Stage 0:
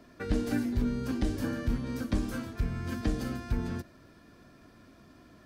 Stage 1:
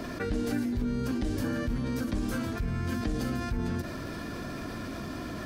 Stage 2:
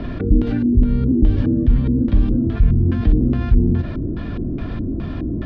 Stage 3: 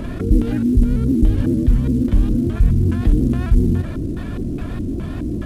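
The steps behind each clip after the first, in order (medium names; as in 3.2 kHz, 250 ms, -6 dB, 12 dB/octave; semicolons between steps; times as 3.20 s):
level flattener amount 70%; trim -4 dB
LFO low-pass square 2.4 Hz 340–3400 Hz; RIAA curve playback; trim +2.5 dB
CVSD coder 64 kbps; vibrato with a chosen wave saw up 5.2 Hz, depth 100 cents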